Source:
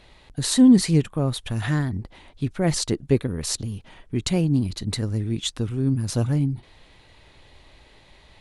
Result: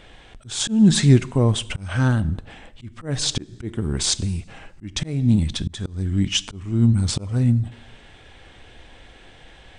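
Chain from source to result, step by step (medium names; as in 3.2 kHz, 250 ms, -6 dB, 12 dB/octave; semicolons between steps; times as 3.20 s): two-slope reverb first 0.7 s, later 2.6 s, from -26 dB, DRR 16.5 dB; wide varispeed 0.859×; slow attack 318 ms; trim +5.5 dB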